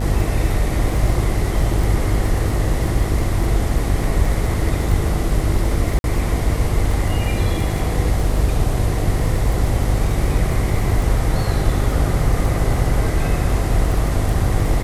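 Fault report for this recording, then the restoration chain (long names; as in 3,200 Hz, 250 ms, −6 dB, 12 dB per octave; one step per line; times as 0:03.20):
mains buzz 50 Hz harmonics 17 −22 dBFS
surface crackle 22 per second −23 dBFS
0:05.99–0:06.04: drop-out 51 ms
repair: click removal
hum removal 50 Hz, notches 17
repair the gap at 0:05.99, 51 ms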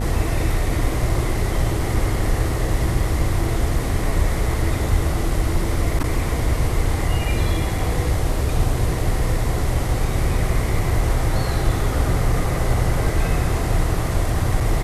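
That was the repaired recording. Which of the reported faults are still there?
none of them is left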